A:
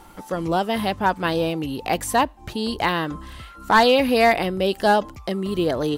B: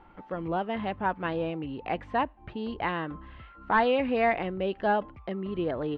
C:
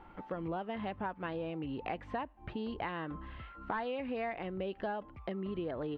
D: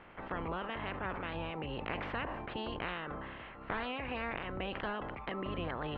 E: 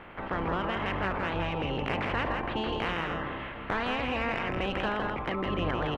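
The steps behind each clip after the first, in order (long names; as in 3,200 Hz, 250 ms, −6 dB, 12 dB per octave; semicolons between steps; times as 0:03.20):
low-pass filter 2,700 Hz 24 dB per octave; level −8 dB
downward compressor 6 to 1, threshold −35 dBFS, peak gain reduction 15 dB
ceiling on every frequency bin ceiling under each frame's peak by 24 dB; high-frequency loss of the air 400 metres; level that may fall only so fast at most 28 dB per second; level +1 dB
in parallel at −3.5 dB: soft clipping −35.5 dBFS, distortion −12 dB; on the sum: single-tap delay 163 ms −4.5 dB; level +3.5 dB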